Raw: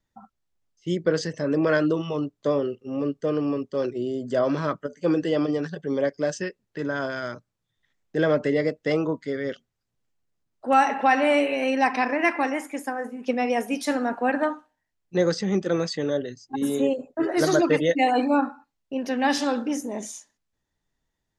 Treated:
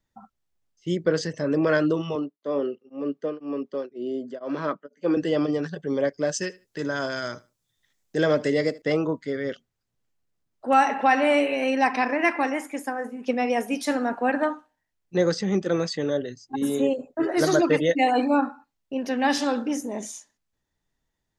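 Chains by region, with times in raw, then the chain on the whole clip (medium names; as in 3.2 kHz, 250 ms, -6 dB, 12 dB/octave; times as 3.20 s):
2.15–5.17 s: high-pass 190 Hz 24 dB/octave + peaking EQ 10 kHz -15 dB 1.3 oct + tremolo of two beating tones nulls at 2 Hz
6.34–8.82 s: tone controls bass -1 dB, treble +11 dB + feedback delay 76 ms, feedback 21%, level -20.5 dB
whole clip: none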